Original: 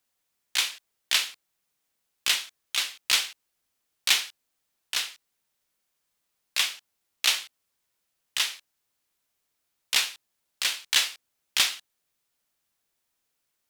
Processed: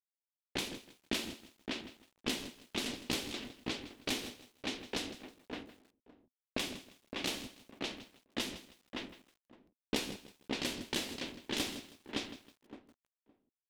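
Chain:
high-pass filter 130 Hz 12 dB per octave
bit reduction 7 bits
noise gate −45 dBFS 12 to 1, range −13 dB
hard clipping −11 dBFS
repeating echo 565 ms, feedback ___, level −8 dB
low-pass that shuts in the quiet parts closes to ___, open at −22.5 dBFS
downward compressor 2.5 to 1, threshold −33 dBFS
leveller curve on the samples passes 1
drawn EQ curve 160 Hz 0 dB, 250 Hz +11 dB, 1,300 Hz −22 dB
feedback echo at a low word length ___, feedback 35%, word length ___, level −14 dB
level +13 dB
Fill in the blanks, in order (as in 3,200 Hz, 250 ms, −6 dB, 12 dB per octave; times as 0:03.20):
23%, 880 Hz, 160 ms, 11 bits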